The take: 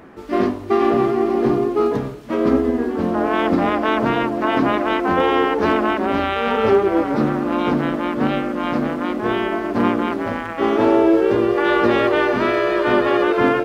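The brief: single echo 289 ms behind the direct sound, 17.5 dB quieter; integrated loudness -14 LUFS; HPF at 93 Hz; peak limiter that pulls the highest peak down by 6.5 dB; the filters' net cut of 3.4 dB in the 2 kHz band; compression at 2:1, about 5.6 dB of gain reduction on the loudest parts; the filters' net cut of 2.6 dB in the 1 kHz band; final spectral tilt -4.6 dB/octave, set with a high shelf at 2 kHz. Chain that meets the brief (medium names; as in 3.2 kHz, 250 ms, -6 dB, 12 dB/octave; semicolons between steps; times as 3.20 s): high-pass 93 Hz; peaking EQ 1 kHz -3 dB; treble shelf 2 kHz +4.5 dB; peaking EQ 2 kHz -6 dB; compression 2:1, threshold -22 dBFS; peak limiter -16.5 dBFS; delay 289 ms -17.5 dB; trim +11.5 dB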